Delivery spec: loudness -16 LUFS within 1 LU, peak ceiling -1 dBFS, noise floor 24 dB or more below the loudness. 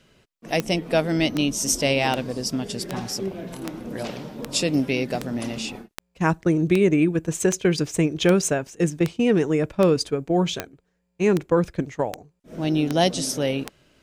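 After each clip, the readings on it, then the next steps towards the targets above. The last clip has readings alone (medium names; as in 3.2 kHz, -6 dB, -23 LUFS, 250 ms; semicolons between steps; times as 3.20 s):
clicks found 18; loudness -23.0 LUFS; peak level -4.5 dBFS; loudness target -16.0 LUFS
-> de-click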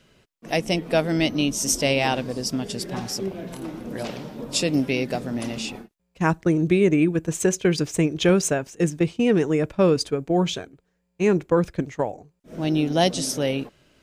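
clicks found 0; loudness -23.0 LUFS; peak level -6.5 dBFS; loudness target -16.0 LUFS
-> trim +7 dB; peak limiter -1 dBFS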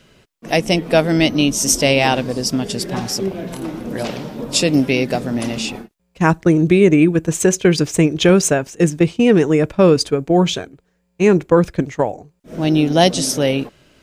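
loudness -16.5 LUFS; peak level -1.0 dBFS; noise floor -66 dBFS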